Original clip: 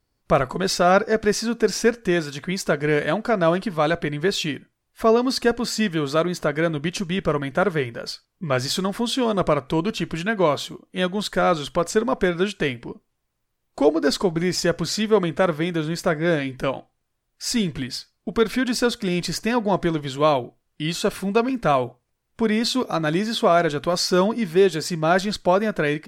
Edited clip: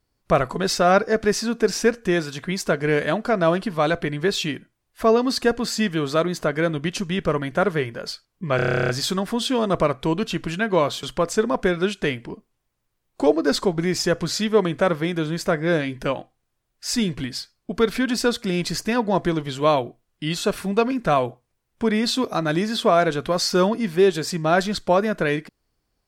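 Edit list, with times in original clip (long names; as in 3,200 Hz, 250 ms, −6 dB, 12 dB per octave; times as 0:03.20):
0:08.56: stutter 0.03 s, 12 plays
0:10.70–0:11.61: remove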